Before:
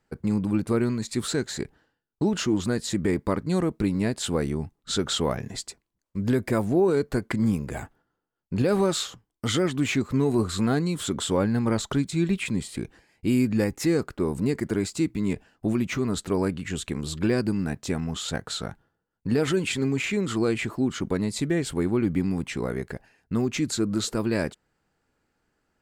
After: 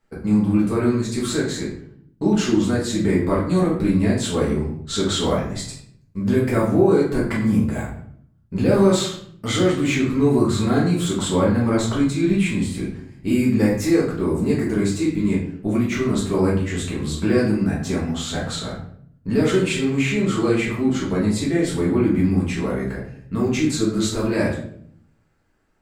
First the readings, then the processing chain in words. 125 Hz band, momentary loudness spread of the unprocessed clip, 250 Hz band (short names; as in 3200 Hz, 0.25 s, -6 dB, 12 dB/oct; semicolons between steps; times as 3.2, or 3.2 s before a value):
+5.5 dB, 9 LU, +6.0 dB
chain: bell 1200 Hz +2 dB 0.39 oct; shoebox room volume 97 m³, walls mixed, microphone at 1.6 m; gain -2.5 dB